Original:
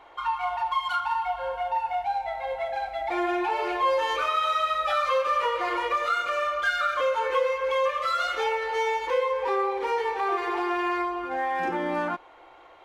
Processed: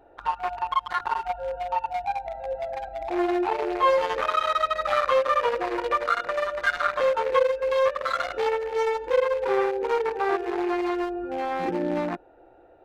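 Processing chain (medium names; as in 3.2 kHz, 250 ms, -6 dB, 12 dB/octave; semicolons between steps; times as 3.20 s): local Wiener filter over 41 samples; trim +5.5 dB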